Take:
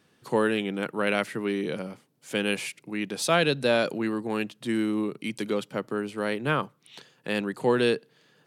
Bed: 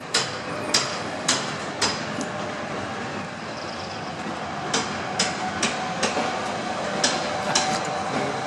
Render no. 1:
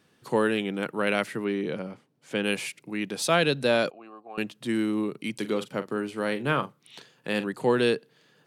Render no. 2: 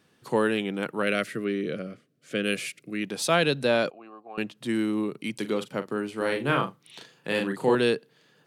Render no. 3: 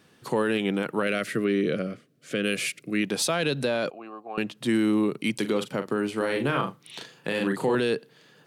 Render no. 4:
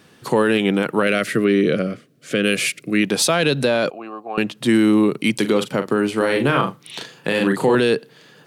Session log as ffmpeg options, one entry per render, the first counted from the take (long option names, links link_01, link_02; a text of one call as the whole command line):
ffmpeg -i in.wav -filter_complex "[0:a]asettb=1/sr,asplit=3[link_01][link_02][link_03];[link_01]atrim=end=1.444[link_04];[link_02]atrim=start=1.44:end=2.44,asetpts=PTS-STARTPTS,afade=type=in:duration=0.004:curve=qsin,afade=type=out:start_time=0.996:duration=0.004:curve=qsin,aemphasis=mode=reproduction:type=50kf[link_05];[link_03]atrim=start=2.436[link_06];[link_04][link_05]acrossfade=duration=0.004:curve1=hsin:curve2=qsin[link_07];[link_07][link_06]acrossfade=duration=0.004:curve1=qsin:curve2=hsin,asettb=1/sr,asplit=3[link_08][link_09][link_10];[link_08]atrim=end=3.904[link_11];[link_09]atrim=start=3.9:end=4.38,asetpts=PTS-STARTPTS,afade=type=in:duration=0.004:curve=qsin,afade=type=out:start_time=0.476:duration=0.004:curve=qsin,asplit=3[link_12][link_13][link_14];[link_12]bandpass=frequency=730:width_type=q:width=8,volume=0dB[link_15];[link_13]bandpass=frequency=1090:width_type=q:width=8,volume=-6dB[link_16];[link_14]bandpass=frequency=2440:width_type=q:width=8,volume=-9dB[link_17];[link_15][link_16][link_17]amix=inputs=3:normalize=0[link_18];[link_10]atrim=start=4.376[link_19];[link_11][link_18]acrossfade=duration=0.004:curve1=hsin:curve2=qsin[link_20];[link_20][link_19]acrossfade=duration=0.004:curve1=qsin:curve2=hsin,asettb=1/sr,asplit=3[link_21][link_22][link_23];[link_21]atrim=end=5.394[link_24];[link_22]atrim=start=5.39:end=7.47,asetpts=PTS-STARTPTS,afade=type=in:duration=0.004:curve=qsin,afade=type=out:start_time=2.076:duration=0.004:curve=qsin,asplit=2[link_25][link_26];[link_26]adelay=42,volume=-12dB[link_27];[link_25][link_27]amix=inputs=2:normalize=0,atrim=end_sample=91728[link_28];[link_23]atrim=start=7.466[link_29];[link_24][link_28]acrossfade=duration=0.004:curve1=hsin:curve2=qsin[link_30];[link_30][link_29]acrossfade=duration=0.004:curve1=qsin:curve2=hsin" out.wav
ffmpeg -i in.wav -filter_complex "[0:a]asettb=1/sr,asplit=3[link_01][link_02][link_03];[link_01]atrim=end=1.034[link_04];[link_02]atrim=start=1.03:end=3.04,asetpts=PTS-STARTPTS,afade=type=in:duration=0.004:curve=qsin,afade=type=out:start_time=2.006:duration=0.004:curve=qsin,asuperstop=centerf=890:order=4:qfactor=1.9[link_05];[link_03]atrim=start=3.036[link_06];[link_04][link_05]acrossfade=duration=0.004:curve1=hsin:curve2=qsin[link_07];[link_07][link_06]acrossfade=duration=0.004:curve1=qsin:curve2=hsin,asettb=1/sr,asplit=3[link_08][link_09][link_10];[link_08]atrim=end=3.654[link_11];[link_09]atrim=start=3.65:end=4.57,asetpts=PTS-STARTPTS,afade=type=in:duration=0.004:curve=qsin,afade=type=out:start_time=0.916:duration=0.004:curve=qsin,highshelf=frequency=7200:gain=-7.5[link_12];[link_10]atrim=start=4.566[link_13];[link_11][link_12]acrossfade=duration=0.004:curve1=hsin:curve2=qsin[link_14];[link_14][link_13]acrossfade=duration=0.004:curve1=qsin:curve2=hsin,asettb=1/sr,asplit=3[link_15][link_16][link_17];[link_15]atrim=end=6.174[link_18];[link_16]atrim=start=6.17:end=7.75,asetpts=PTS-STARTPTS,afade=type=in:duration=0.004:curve=qsin,afade=type=out:start_time=1.576:duration=0.004:curve=qsin,asplit=2[link_19][link_20];[link_20]adelay=36,volume=-3.5dB[link_21];[link_19][link_21]amix=inputs=2:normalize=0,atrim=end_sample=69678[link_22];[link_17]atrim=start=7.746[link_23];[link_18][link_22]acrossfade=duration=0.004:curve1=hsin:curve2=qsin[link_24];[link_24][link_23]acrossfade=duration=0.004:curve1=qsin:curve2=hsin" out.wav
ffmpeg -i in.wav -af "acontrast=36,alimiter=limit=-15.5dB:level=0:latency=1:release=84" out.wav
ffmpeg -i in.wav -af "volume=8dB" out.wav